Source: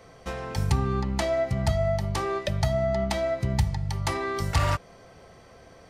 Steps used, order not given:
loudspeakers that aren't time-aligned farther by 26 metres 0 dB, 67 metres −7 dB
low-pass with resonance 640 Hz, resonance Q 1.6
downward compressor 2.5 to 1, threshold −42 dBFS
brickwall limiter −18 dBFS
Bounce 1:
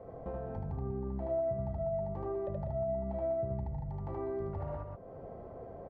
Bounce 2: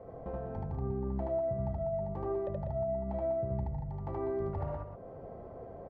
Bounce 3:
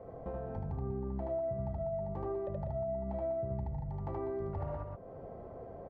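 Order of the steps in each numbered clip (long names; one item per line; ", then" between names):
brickwall limiter, then loudspeakers that aren't time-aligned, then downward compressor, then low-pass with resonance
low-pass with resonance, then brickwall limiter, then downward compressor, then loudspeakers that aren't time-aligned
low-pass with resonance, then brickwall limiter, then loudspeakers that aren't time-aligned, then downward compressor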